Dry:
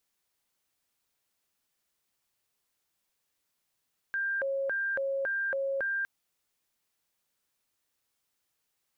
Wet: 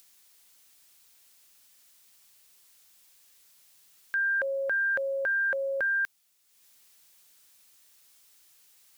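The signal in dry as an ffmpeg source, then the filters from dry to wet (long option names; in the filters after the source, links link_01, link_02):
-f lavfi -i "aevalsrc='0.0398*sin(2*PI*(1068*t+522/1.8*(0.5-abs(mod(1.8*t,1)-0.5))))':duration=1.91:sample_rate=44100"
-af "highshelf=frequency=2000:gain=11.5,acompressor=mode=upward:threshold=-50dB:ratio=2.5"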